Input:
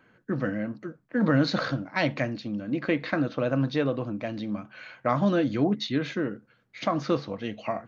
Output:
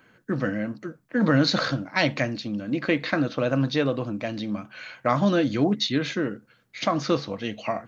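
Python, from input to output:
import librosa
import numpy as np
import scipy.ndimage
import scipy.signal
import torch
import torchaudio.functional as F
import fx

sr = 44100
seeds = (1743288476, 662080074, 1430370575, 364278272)

y = fx.high_shelf(x, sr, hz=3700.0, db=10.0)
y = y * librosa.db_to_amplitude(2.0)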